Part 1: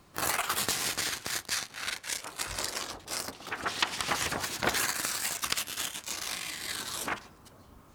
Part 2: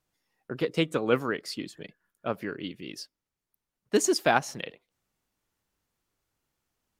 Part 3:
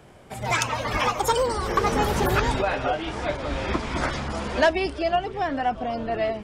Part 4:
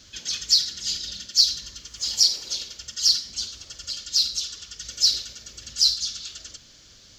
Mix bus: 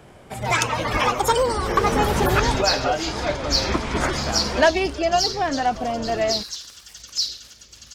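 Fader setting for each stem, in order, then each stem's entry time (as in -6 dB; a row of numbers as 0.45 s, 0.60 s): -18.5 dB, -8.5 dB, +3.0 dB, -4.5 dB; 1.65 s, 0.00 s, 0.00 s, 2.15 s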